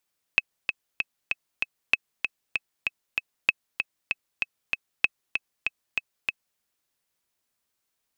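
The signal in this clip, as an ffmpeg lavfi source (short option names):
-f lavfi -i "aevalsrc='pow(10,(-5-6.5*gte(mod(t,5*60/193),60/193))/20)*sin(2*PI*2580*mod(t,60/193))*exp(-6.91*mod(t,60/193)/0.03)':d=6.21:s=44100"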